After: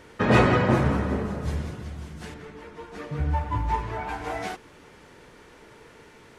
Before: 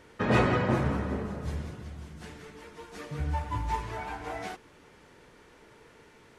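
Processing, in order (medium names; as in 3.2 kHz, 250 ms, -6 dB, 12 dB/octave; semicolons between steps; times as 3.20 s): 2.34–4.09 s: treble shelf 3.7 kHz -11.5 dB; trim +5.5 dB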